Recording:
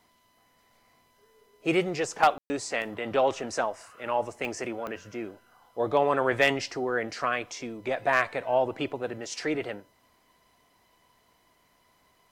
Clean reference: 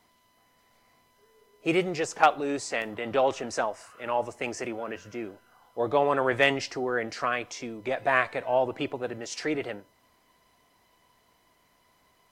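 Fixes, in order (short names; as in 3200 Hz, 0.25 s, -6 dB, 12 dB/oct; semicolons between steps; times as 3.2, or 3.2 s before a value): clip repair -11.5 dBFS; de-click; room tone fill 2.38–2.5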